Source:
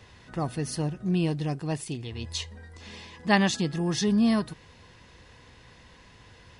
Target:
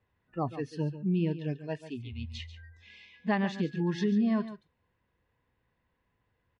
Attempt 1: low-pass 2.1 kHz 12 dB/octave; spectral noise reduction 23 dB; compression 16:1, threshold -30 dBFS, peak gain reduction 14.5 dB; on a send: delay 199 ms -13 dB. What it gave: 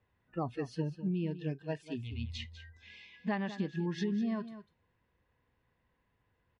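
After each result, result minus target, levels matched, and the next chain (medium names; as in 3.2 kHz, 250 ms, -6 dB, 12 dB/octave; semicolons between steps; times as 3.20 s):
echo 58 ms late; compression: peak gain reduction +6 dB
low-pass 2.1 kHz 12 dB/octave; spectral noise reduction 23 dB; compression 16:1, threshold -30 dBFS, peak gain reduction 14.5 dB; on a send: delay 141 ms -13 dB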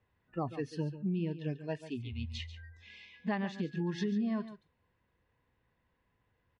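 compression: peak gain reduction +6 dB
low-pass 2.1 kHz 12 dB/octave; spectral noise reduction 23 dB; compression 16:1, threshold -23.5 dBFS, peak gain reduction 8 dB; on a send: delay 141 ms -13 dB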